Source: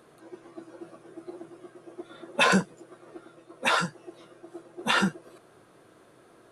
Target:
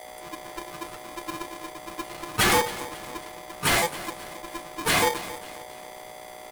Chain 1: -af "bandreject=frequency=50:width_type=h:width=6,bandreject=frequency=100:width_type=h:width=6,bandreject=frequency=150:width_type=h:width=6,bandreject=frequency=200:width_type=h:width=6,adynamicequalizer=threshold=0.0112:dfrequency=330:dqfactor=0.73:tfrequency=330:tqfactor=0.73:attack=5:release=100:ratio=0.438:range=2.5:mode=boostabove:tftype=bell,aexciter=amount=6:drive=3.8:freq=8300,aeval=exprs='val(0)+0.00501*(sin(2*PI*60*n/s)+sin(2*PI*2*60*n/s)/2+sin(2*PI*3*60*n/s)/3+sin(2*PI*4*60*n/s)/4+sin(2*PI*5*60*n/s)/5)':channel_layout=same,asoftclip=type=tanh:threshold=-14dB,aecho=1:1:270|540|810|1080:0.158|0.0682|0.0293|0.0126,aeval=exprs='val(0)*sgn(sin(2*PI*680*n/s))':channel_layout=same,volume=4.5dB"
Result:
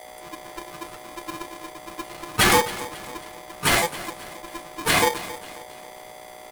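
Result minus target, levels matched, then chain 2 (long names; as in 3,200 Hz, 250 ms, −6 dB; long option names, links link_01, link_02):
soft clipping: distortion −8 dB
-af "bandreject=frequency=50:width_type=h:width=6,bandreject=frequency=100:width_type=h:width=6,bandreject=frequency=150:width_type=h:width=6,bandreject=frequency=200:width_type=h:width=6,adynamicequalizer=threshold=0.0112:dfrequency=330:dqfactor=0.73:tfrequency=330:tqfactor=0.73:attack=5:release=100:ratio=0.438:range=2.5:mode=boostabove:tftype=bell,aexciter=amount=6:drive=3.8:freq=8300,aeval=exprs='val(0)+0.00501*(sin(2*PI*60*n/s)+sin(2*PI*2*60*n/s)/2+sin(2*PI*3*60*n/s)/3+sin(2*PI*4*60*n/s)/4+sin(2*PI*5*60*n/s)/5)':channel_layout=same,asoftclip=type=tanh:threshold=-21dB,aecho=1:1:270|540|810|1080:0.158|0.0682|0.0293|0.0126,aeval=exprs='val(0)*sgn(sin(2*PI*680*n/s))':channel_layout=same,volume=4.5dB"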